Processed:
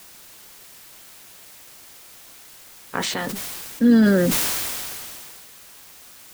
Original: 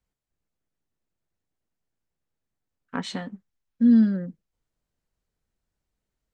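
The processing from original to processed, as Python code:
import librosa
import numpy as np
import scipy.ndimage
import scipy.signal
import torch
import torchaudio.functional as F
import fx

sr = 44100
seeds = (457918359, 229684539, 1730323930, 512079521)

y = fx.spec_clip(x, sr, under_db=15)
y = fx.quant_dither(y, sr, seeds[0], bits=8, dither='triangular')
y = fx.sustainer(y, sr, db_per_s=22.0)
y = y * librosa.db_to_amplitude(2.5)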